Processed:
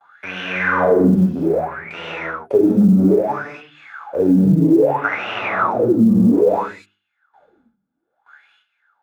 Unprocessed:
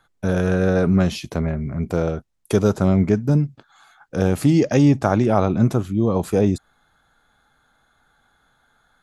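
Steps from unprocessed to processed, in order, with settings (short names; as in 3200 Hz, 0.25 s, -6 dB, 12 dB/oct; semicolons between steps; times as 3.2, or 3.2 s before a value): half-wave gain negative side -12 dB; gate with hold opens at -51 dBFS; notches 50/100/150/200/250/300/350/400 Hz; 4.52–5.04 air absorption 460 m; non-linear reverb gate 0.29 s flat, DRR -7.5 dB; wah 0.61 Hz 200–2900 Hz, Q 10; short-mantissa float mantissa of 6-bit; 0.51–1.15 flutter echo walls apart 7.5 m, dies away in 0.66 s; maximiser +18 dB; three-band squash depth 40%; gain -4.5 dB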